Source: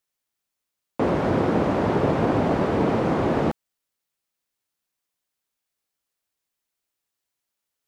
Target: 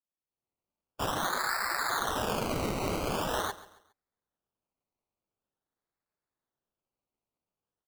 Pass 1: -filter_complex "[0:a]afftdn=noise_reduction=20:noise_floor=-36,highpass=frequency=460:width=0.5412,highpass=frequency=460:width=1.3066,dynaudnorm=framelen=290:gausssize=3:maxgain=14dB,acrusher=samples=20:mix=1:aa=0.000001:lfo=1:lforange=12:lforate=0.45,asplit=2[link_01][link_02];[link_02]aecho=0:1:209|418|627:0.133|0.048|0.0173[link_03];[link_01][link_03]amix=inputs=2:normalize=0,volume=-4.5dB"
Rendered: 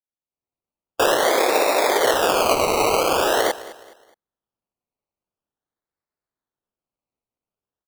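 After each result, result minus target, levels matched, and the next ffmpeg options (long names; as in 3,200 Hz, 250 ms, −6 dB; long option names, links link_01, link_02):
echo 72 ms late; 500 Hz band +4.5 dB
-filter_complex "[0:a]afftdn=noise_reduction=20:noise_floor=-36,highpass=frequency=460:width=0.5412,highpass=frequency=460:width=1.3066,dynaudnorm=framelen=290:gausssize=3:maxgain=14dB,acrusher=samples=20:mix=1:aa=0.000001:lfo=1:lforange=12:lforate=0.45,asplit=2[link_01][link_02];[link_02]aecho=0:1:137|274|411:0.133|0.048|0.0173[link_03];[link_01][link_03]amix=inputs=2:normalize=0,volume=-4.5dB"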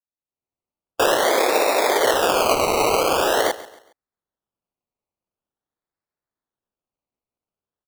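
500 Hz band +4.5 dB
-filter_complex "[0:a]afftdn=noise_reduction=20:noise_floor=-36,highpass=frequency=1500:width=0.5412,highpass=frequency=1500:width=1.3066,dynaudnorm=framelen=290:gausssize=3:maxgain=14dB,acrusher=samples=20:mix=1:aa=0.000001:lfo=1:lforange=12:lforate=0.45,asplit=2[link_01][link_02];[link_02]aecho=0:1:137|274|411:0.133|0.048|0.0173[link_03];[link_01][link_03]amix=inputs=2:normalize=0,volume=-4.5dB"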